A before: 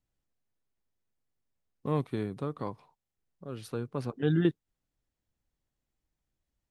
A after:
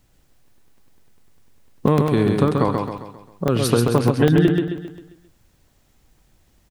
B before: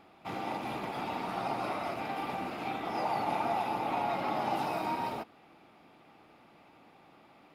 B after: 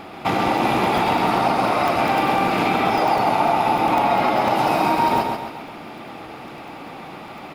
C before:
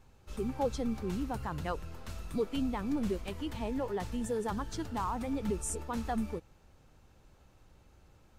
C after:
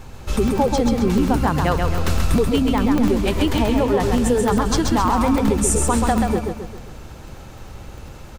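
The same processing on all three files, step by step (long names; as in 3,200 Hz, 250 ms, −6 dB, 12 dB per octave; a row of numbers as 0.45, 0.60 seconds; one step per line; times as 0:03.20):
downward compressor 6 to 1, threshold −38 dBFS
repeating echo 133 ms, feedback 45%, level −4 dB
regular buffer underruns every 0.10 s, samples 64, zero, from 0:00.48
loudness normalisation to −19 LKFS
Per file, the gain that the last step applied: +24.0, +21.0, +22.0 decibels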